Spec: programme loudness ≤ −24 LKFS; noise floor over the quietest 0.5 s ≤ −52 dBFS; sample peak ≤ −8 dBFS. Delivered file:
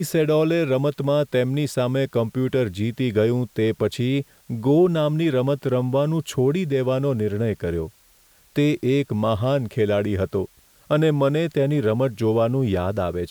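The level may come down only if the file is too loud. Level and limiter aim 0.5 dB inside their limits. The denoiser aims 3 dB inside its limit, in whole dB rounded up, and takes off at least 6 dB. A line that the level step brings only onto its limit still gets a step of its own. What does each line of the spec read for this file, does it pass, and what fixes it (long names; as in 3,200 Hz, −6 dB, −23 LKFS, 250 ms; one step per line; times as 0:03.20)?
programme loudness −22.0 LKFS: out of spec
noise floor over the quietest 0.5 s −56 dBFS: in spec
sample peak −8.5 dBFS: in spec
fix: level −2.5 dB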